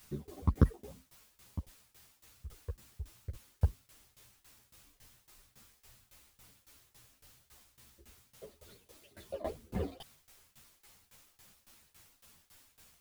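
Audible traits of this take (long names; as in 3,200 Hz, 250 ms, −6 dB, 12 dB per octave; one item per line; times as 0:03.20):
phaser sweep stages 12, 2.2 Hz, lowest notch 140–1,000 Hz
a quantiser's noise floor 10 bits, dither triangular
tremolo saw down 3.6 Hz, depth 95%
a shimmering, thickened sound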